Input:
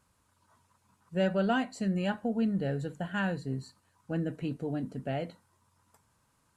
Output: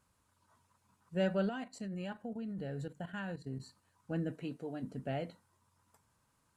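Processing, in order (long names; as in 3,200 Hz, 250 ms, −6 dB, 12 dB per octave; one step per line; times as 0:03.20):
0:01.49–0:03.60: output level in coarse steps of 12 dB
0:04.32–0:04.81: high-pass filter 180 Hz → 480 Hz 6 dB per octave
level −4 dB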